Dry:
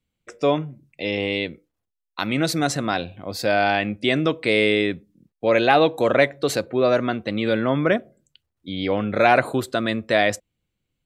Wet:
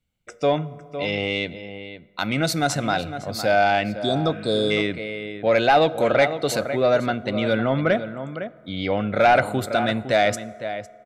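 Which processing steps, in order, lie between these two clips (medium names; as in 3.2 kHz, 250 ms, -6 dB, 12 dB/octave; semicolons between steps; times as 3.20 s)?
comb 1.4 ms, depth 34%; echo from a far wall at 87 m, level -11 dB; spectral replace 4.01–4.68 s, 1.4–3.3 kHz before; saturation -7 dBFS, distortion -20 dB; on a send at -18 dB: reverberation RT60 2.3 s, pre-delay 4 ms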